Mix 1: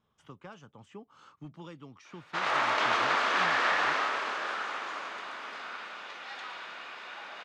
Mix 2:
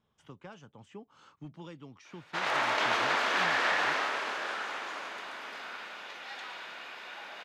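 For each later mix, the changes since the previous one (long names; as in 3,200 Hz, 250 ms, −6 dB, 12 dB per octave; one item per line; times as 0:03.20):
background: add parametric band 12,000 Hz +14 dB 0.43 octaves
master: add parametric band 1,200 Hz −5 dB 0.35 octaves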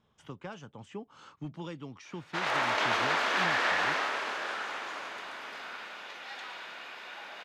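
speech +5.5 dB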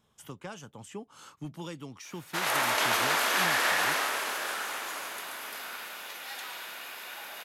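master: remove high-frequency loss of the air 150 metres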